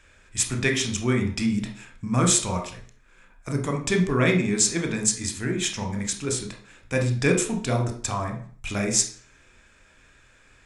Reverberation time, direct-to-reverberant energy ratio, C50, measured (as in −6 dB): 0.50 s, 3.0 dB, 8.5 dB